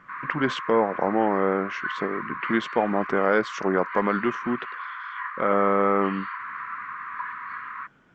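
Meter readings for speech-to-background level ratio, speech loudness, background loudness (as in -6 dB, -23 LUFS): 9.0 dB, -25.0 LUFS, -34.0 LUFS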